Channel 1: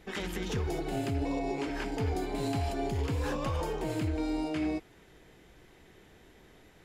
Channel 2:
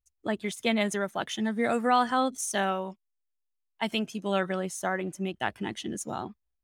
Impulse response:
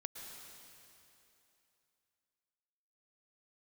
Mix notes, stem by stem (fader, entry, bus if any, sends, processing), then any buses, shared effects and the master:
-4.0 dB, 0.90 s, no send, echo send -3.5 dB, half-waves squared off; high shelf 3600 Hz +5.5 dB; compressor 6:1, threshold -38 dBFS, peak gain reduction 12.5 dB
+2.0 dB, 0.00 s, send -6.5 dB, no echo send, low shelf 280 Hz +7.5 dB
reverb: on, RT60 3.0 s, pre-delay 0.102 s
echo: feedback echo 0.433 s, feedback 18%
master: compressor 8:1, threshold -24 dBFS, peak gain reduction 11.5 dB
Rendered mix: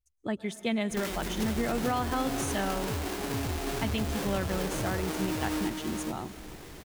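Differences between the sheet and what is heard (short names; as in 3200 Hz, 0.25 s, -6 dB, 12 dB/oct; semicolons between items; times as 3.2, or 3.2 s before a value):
stem 1 -4.0 dB -> +4.5 dB; stem 2 +2.0 dB -> -7.0 dB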